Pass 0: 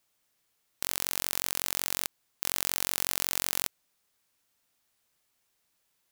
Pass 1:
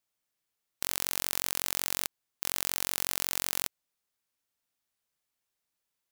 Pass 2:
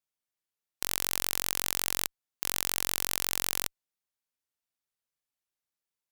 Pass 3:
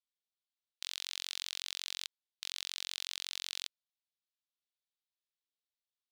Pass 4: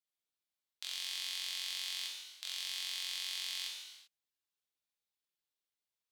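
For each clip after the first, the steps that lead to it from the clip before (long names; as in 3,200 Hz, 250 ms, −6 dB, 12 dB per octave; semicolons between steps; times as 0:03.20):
output level in coarse steps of 17 dB
harmonic generator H 3 −8 dB, 5 −20 dB, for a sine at −2.5 dBFS; level +3 dB
resonant band-pass 3,700 Hz, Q 2.5
reverb whose tail is shaped and stops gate 420 ms falling, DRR −2.5 dB; level −3.5 dB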